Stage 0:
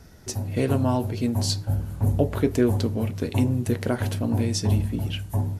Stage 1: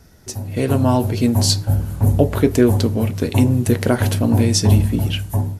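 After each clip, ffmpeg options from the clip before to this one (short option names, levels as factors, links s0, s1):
-af "highshelf=f=7300:g=4.5,dynaudnorm=f=290:g=5:m=3.76"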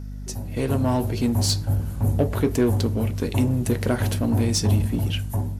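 -filter_complex "[0:a]aeval=exprs='val(0)+0.0398*(sin(2*PI*50*n/s)+sin(2*PI*2*50*n/s)/2+sin(2*PI*3*50*n/s)/3+sin(2*PI*4*50*n/s)/4+sin(2*PI*5*50*n/s)/5)':c=same,asplit=2[s0][s1];[s1]asoftclip=type=hard:threshold=0.15,volume=0.708[s2];[s0][s2]amix=inputs=2:normalize=0,volume=0.355"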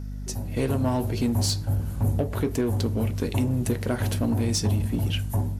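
-af "alimiter=limit=0.168:level=0:latency=1:release=358"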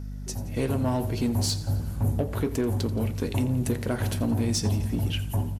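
-af "aecho=1:1:86|172|258|344|430:0.141|0.0819|0.0475|0.0276|0.016,volume=0.841"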